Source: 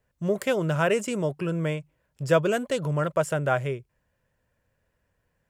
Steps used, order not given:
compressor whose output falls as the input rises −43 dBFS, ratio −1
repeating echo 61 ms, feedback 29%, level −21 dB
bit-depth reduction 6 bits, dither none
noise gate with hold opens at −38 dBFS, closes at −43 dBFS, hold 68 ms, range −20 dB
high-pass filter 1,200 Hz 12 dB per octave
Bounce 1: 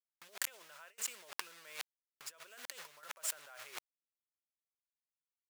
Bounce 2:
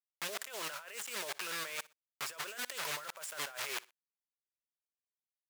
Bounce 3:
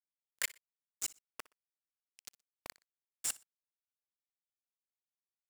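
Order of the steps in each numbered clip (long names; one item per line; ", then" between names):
repeating echo, then bit-depth reduction, then compressor whose output falls as the input rises, then noise gate with hold, then high-pass filter
noise gate with hold, then bit-depth reduction, then high-pass filter, then compressor whose output falls as the input rises, then repeating echo
compressor whose output falls as the input rises, then high-pass filter, then bit-depth reduction, then noise gate with hold, then repeating echo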